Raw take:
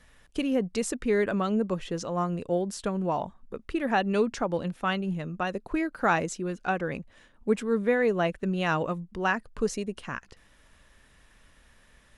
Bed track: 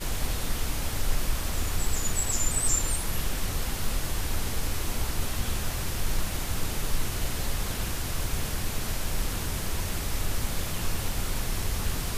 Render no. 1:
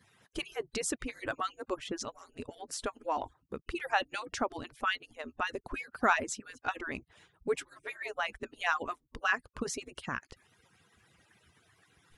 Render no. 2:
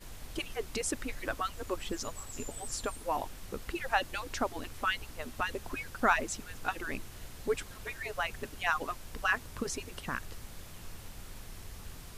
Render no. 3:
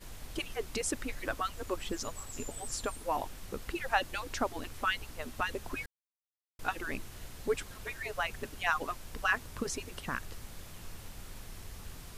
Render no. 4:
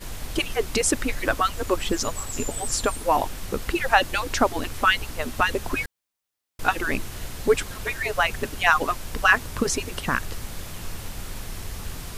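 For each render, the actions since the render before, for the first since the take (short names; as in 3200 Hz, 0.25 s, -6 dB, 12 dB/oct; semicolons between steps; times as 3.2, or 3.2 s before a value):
median-filter separation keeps percussive; dynamic EQ 510 Hz, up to -5 dB, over -42 dBFS, Q 1.2
add bed track -17 dB
5.86–6.59 mute
gain +12 dB; limiter -3 dBFS, peak gain reduction 1.5 dB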